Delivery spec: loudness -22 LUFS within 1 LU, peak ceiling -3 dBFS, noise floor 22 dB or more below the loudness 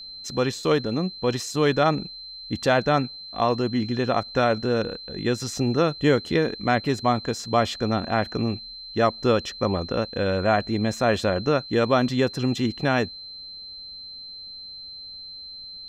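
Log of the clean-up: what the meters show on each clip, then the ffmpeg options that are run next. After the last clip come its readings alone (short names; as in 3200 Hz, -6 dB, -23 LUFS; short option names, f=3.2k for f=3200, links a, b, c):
steady tone 4100 Hz; tone level -37 dBFS; loudness -24.0 LUFS; peak -7.0 dBFS; loudness target -22.0 LUFS
-> -af "bandreject=f=4.1k:w=30"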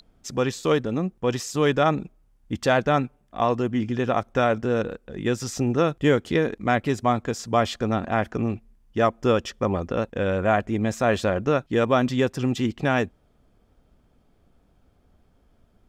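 steady tone none; loudness -24.0 LUFS; peak -7.0 dBFS; loudness target -22.0 LUFS
-> -af "volume=2dB"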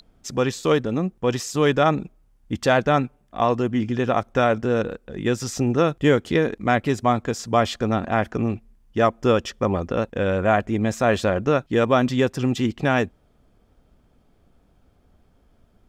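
loudness -22.0 LUFS; peak -5.0 dBFS; noise floor -61 dBFS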